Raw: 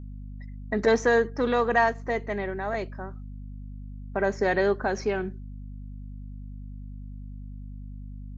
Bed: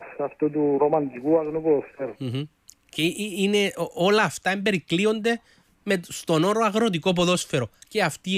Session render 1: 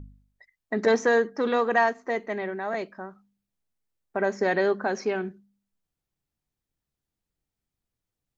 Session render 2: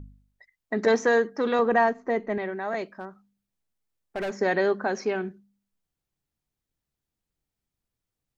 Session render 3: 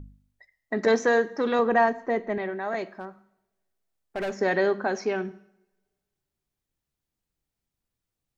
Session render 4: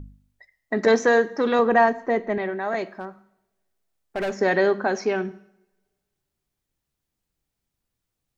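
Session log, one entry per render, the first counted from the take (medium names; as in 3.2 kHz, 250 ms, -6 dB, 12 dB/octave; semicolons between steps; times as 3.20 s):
de-hum 50 Hz, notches 5
1.59–2.38 s: tilt EQ -2.5 dB/octave; 2.94–4.32 s: hard clipper -26.5 dBFS
two-slope reverb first 0.72 s, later 2 s, from -26 dB, DRR 15.5 dB
trim +3.5 dB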